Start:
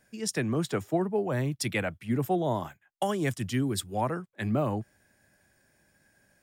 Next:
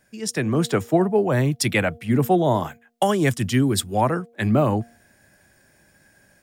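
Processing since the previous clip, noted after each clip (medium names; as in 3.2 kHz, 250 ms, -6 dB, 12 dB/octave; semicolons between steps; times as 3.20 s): de-hum 234.5 Hz, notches 3; level rider gain up to 5.5 dB; trim +3.5 dB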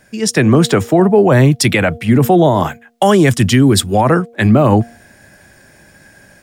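treble shelf 10 kHz -6 dB; loudness maximiser +14 dB; trim -1 dB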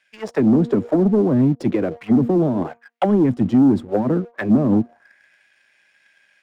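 partial rectifier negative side -7 dB; auto-wah 250–2700 Hz, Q 2.4, down, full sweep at -9.5 dBFS; waveshaping leveller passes 1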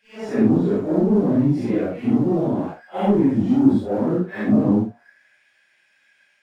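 phase randomisation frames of 200 ms; trim -1.5 dB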